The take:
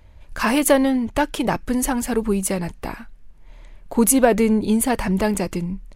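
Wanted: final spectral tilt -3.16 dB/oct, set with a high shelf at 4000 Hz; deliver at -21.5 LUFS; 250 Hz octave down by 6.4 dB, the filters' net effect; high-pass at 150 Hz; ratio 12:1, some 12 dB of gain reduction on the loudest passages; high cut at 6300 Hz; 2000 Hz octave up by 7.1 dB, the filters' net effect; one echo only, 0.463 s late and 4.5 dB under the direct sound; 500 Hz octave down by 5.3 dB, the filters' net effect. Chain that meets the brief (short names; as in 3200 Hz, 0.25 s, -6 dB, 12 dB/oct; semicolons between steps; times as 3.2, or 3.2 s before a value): HPF 150 Hz; LPF 6300 Hz; bell 250 Hz -5.5 dB; bell 500 Hz -5.5 dB; bell 2000 Hz +8 dB; high shelf 4000 Hz +6.5 dB; compressor 12:1, threshold -25 dBFS; echo 0.463 s -4.5 dB; gain +7.5 dB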